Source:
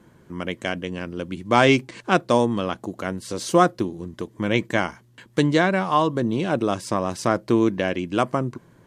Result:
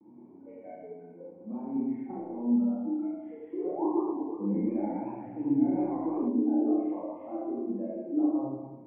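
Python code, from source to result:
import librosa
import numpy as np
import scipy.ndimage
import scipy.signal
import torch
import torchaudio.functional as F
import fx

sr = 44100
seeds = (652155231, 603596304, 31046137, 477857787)

y = fx.delta_mod(x, sr, bps=16000, step_db=-18.5)
y = fx.noise_reduce_blind(y, sr, reduce_db=25)
y = scipy.signal.sosfilt(scipy.signal.butter(2, 150.0, 'highpass', fs=sr, output='sos'), y)
y = fx.peak_eq(y, sr, hz=230.0, db=5.5, octaves=0.24)
y = fx.over_compress(y, sr, threshold_db=-22.0, ratio=-0.5)
y = fx.spec_paint(y, sr, seeds[0], shape='rise', start_s=3.52, length_s=0.35, low_hz=330.0, high_hz=1100.0, level_db=-23.0)
y = fx.formant_cascade(y, sr, vowel='u')
y = fx.vibrato(y, sr, rate_hz=0.83, depth_cents=74.0)
y = fx.doubler(y, sr, ms=30.0, db=-4.0)
y = fx.rev_schroeder(y, sr, rt60_s=1.2, comb_ms=29, drr_db=-5.5)
y = fx.echo_warbled(y, sr, ms=114, feedback_pct=67, rate_hz=2.8, cents=192, wet_db=-5.5, at=(3.85, 6.28))
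y = y * librosa.db_to_amplitude(-4.5)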